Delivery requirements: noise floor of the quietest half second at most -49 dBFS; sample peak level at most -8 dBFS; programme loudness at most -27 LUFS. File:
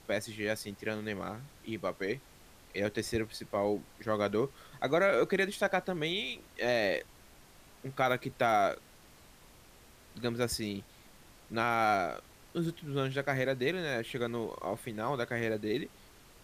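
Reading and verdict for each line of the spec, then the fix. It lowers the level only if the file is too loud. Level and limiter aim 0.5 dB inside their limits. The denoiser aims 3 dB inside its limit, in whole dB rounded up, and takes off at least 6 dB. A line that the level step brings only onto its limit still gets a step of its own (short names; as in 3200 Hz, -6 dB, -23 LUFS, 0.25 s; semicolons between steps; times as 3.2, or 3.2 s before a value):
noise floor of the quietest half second -57 dBFS: OK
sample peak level -16.0 dBFS: OK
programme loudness -33.0 LUFS: OK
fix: none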